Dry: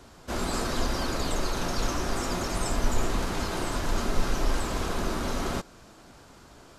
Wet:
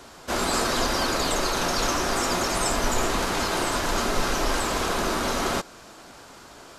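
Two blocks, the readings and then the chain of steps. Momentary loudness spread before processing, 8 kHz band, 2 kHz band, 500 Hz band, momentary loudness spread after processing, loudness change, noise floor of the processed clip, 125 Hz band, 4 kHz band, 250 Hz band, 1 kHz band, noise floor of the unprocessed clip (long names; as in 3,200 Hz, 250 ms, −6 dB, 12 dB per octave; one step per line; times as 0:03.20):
2 LU, +8.0 dB, +8.0 dB, +5.5 dB, 2 LU, +5.5 dB, −47 dBFS, −1.5 dB, +8.0 dB, +3.0 dB, +7.5 dB, −52 dBFS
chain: low-shelf EQ 240 Hz −11.5 dB
level +8 dB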